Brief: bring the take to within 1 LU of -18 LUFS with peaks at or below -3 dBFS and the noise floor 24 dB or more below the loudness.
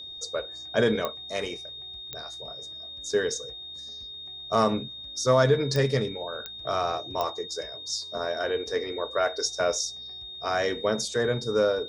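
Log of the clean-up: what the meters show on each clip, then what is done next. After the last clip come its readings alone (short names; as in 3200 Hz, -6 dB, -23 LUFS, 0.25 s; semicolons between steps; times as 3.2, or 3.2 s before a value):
clicks 5; steady tone 3700 Hz; tone level -38 dBFS; loudness -28.5 LUFS; peak -9.0 dBFS; loudness target -18.0 LUFS
-> de-click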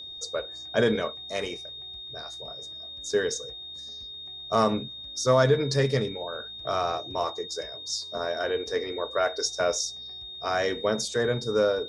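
clicks 0; steady tone 3700 Hz; tone level -38 dBFS
-> notch 3700 Hz, Q 30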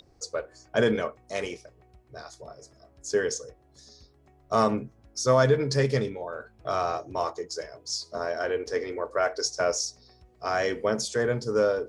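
steady tone none; loudness -28.0 LUFS; peak -9.5 dBFS; loudness target -18.0 LUFS
-> gain +10 dB; limiter -3 dBFS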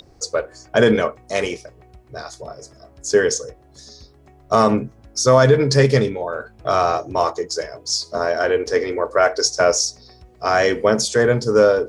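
loudness -18.5 LUFS; peak -3.0 dBFS; noise floor -50 dBFS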